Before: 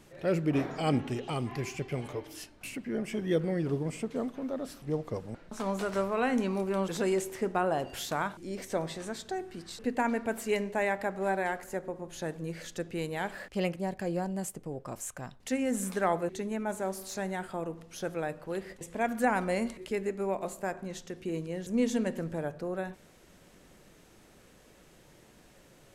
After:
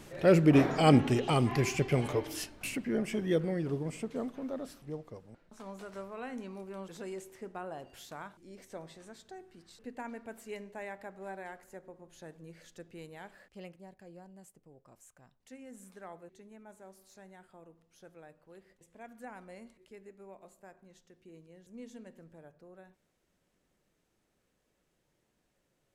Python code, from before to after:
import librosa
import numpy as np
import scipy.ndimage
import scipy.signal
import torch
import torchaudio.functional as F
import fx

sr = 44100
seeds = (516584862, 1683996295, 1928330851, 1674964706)

y = fx.gain(x, sr, db=fx.line((2.35, 6.0), (3.64, -3.0), (4.58, -3.0), (5.21, -13.0), (13.04, -13.0), (14.05, -19.5)))